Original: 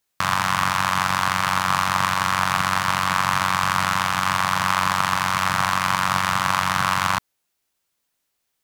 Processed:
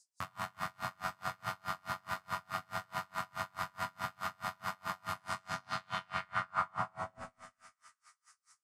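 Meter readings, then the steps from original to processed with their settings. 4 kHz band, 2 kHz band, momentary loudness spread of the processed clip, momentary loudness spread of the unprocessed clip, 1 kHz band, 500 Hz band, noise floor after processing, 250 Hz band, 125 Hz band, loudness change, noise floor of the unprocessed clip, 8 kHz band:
-22.5 dB, -20.0 dB, 5 LU, 1 LU, -19.0 dB, -13.5 dB, under -85 dBFS, -20.5 dB, -20.0 dB, -19.0 dB, -76 dBFS, -24.0 dB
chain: high shelf 2100 Hz -9.5 dB; limiter -15 dBFS, peak gain reduction 8.5 dB; low-pass sweep 14000 Hz -> 150 Hz, 5.02–8.03; band noise 4700–9600 Hz -59 dBFS; resonator bank E2 sus4, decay 0.36 s; on a send: split-band echo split 1600 Hz, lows 0.101 s, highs 0.372 s, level -7 dB; on the sum: dB-linear tremolo 4.7 Hz, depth 35 dB; gain +7.5 dB

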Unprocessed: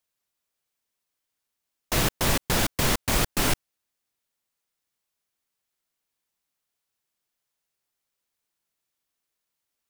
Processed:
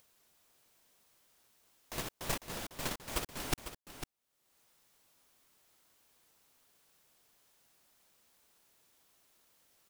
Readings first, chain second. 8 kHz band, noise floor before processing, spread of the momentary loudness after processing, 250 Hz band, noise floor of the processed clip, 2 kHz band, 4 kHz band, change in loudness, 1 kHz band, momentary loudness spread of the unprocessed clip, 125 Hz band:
-14.0 dB, -83 dBFS, 11 LU, -15.5 dB, -80 dBFS, -14.5 dB, -14.0 dB, -15.5 dB, -13.5 dB, 3 LU, -17.0 dB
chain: gate -17 dBFS, range -32 dB; low shelf 230 Hz -8 dB; upward compressor, threshold -59 dBFS; in parallel at -11 dB: sample-rate reducer 2600 Hz; on the sum: echo 0.5 s -10 dB; gain +13.5 dB

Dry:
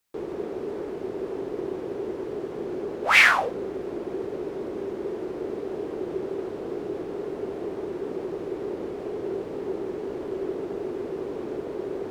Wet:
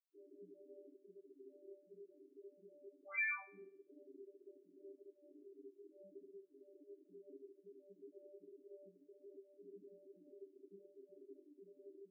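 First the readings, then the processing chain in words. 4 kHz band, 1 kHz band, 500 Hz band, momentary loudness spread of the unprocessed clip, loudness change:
under -40 dB, -30.5 dB, -27.5 dB, 3 LU, -23.0 dB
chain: resonator bank G3 fifth, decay 0.43 s; loudest bins only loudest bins 4; passive tone stack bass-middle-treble 6-0-2; on a send: flutter echo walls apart 3.8 m, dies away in 0.59 s; on the sum: reverb removal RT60 1.1 s; resonant low shelf 160 Hz -9 dB, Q 1.5; gain +15 dB

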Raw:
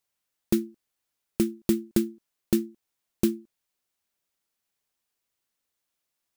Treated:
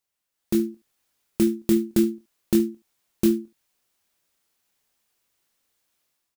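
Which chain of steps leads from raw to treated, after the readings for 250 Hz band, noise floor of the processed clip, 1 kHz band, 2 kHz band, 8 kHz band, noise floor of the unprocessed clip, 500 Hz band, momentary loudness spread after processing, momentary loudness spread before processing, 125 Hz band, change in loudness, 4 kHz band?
+5.0 dB, -82 dBFS, n/a, +2.5 dB, +2.5 dB, -83 dBFS, +5.0 dB, 10 LU, 14 LU, +2.0 dB, +4.0 dB, +2.5 dB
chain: limiter -17 dBFS, peak gain reduction 8 dB; AGC gain up to 10 dB; early reflections 24 ms -8 dB, 73 ms -16.5 dB; gain -2 dB

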